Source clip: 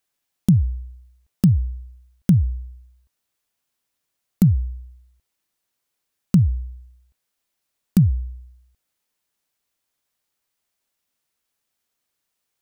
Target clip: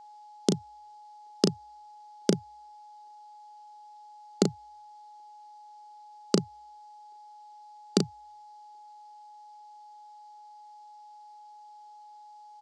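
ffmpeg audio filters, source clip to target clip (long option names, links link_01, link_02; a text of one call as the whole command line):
ffmpeg -i in.wav -filter_complex "[0:a]highpass=frequency=350:width=0.5412,highpass=frequency=350:width=1.3066,equalizer=frequency=400:width_type=q:width=4:gain=9,equalizer=frequency=1000:width_type=q:width=4:gain=-5,equalizer=frequency=1700:width_type=q:width=4:gain=-7,equalizer=frequency=2500:width_type=q:width=4:gain=-7,equalizer=frequency=4700:width_type=q:width=4:gain=8,lowpass=frequency=7400:width=0.5412,lowpass=frequency=7400:width=1.3066,asplit=2[link_01][link_02];[link_02]adelay=35,volume=-6dB[link_03];[link_01][link_03]amix=inputs=2:normalize=0,aeval=exprs='val(0)+0.00158*sin(2*PI*840*n/s)':channel_layout=same,volume=8.5dB" out.wav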